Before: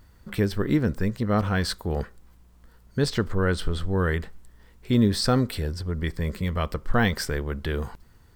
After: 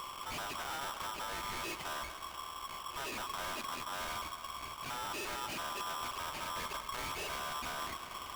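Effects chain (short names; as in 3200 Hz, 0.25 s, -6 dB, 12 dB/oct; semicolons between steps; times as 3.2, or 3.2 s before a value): nonlinear frequency compression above 1000 Hz 4:1; compressor 2:1, threshold -43 dBFS, peak gain reduction 15 dB; tube stage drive 51 dB, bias 0.45; on a send: multi-head echo 74 ms, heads second and third, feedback 69%, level -13 dB; on the sum: polarity switched at an audio rate 1100 Hz; gain +11.5 dB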